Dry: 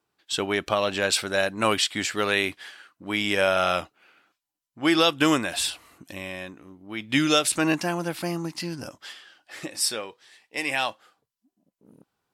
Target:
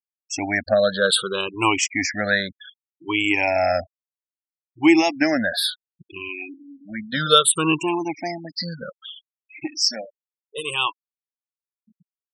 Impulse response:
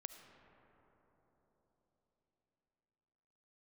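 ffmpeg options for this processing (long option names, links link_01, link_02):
-af "afftfilt=real='re*pow(10,23/40*sin(2*PI*(0.68*log(max(b,1)*sr/1024/100)/log(2)-(-0.64)*(pts-256)/sr)))':imag='im*pow(10,23/40*sin(2*PI*(0.68*log(max(b,1)*sr/1024/100)/log(2)-(-0.64)*(pts-256)/sr)))':win_size=1024:overlap=0.75,afftfilt=real='re*gte(hypot(re,im),0.0562)':imag='im*gte(hypot(re,im),0.0562)':win_size=1024:overlap=0.75,volume=-2dB"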